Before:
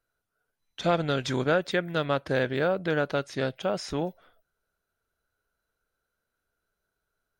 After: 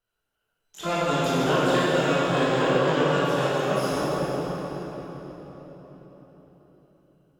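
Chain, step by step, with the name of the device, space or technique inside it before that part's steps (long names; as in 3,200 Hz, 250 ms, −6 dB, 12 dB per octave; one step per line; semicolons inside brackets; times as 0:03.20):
shimmer-style reverb (pitch-shifted copies added +12 semitones −5 dB; convolution reverb RT60 4.6 s, pre-delay 11 ms, DRR −8.5 dB)
level −6 dB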